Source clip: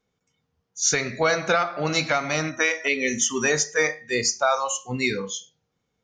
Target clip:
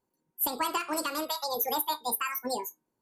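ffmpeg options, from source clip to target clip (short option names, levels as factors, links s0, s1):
-af "equalizer=f=1600:t=o:w=2.1:g=-11,bandreject=f=221.4:t=h:w=4,bandreject=f=442.8:t=h:w=4,bandreject=f=664.2:t=h:w=4,bandreject=f=885.6:t=h:w=4,bandreject=f=1107:t=h:w=4,asetrate=88200,aresample=44100,volume=0.668"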